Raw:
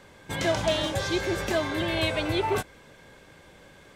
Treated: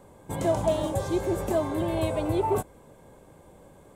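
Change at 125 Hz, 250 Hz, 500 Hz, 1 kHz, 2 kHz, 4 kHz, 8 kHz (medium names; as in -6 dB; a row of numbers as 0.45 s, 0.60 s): +1.5 dB, +1.5 dB, +1.5 dB, +0.5 dB, -12.5 dB, -13.0 dB, -3.0 dB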